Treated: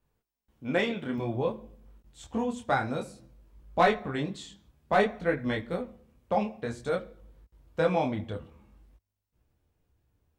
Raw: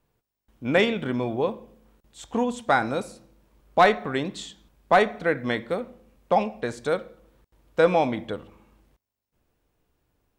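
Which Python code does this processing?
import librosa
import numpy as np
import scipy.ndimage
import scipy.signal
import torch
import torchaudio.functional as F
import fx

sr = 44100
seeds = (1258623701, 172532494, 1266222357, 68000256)

y = fx.peak_eq(x, sr, hz=75.0, db=fx.steps((0.0, 3.0), (1.18, 11.5)), octaves=2.1)
y = fx.detune_double(y, sr, cents=19)
y = y * librosa.db_to_amplitude(-2.5)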